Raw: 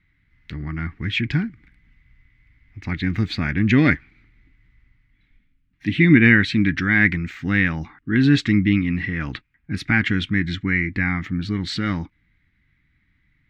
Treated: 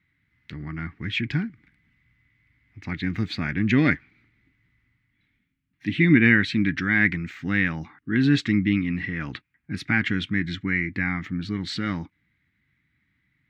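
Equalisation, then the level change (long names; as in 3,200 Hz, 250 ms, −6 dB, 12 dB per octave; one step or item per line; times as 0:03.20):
high-pass filter 100 Hz 12 dB per octave
−3.5 dB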